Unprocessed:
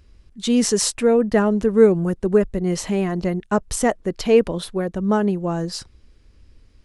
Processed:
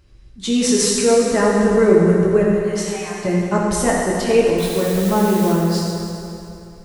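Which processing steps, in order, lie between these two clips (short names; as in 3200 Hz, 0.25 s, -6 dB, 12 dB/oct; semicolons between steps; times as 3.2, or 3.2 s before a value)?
2.45–3.25 Chebyshev high-pass 790 Hz, order 5; 4.58–5.53 requantised 6-bit, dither triangular; reverb RT60 2.9 s, pre-delay 4 ms, DRR -5 dB; gain -1.5 dB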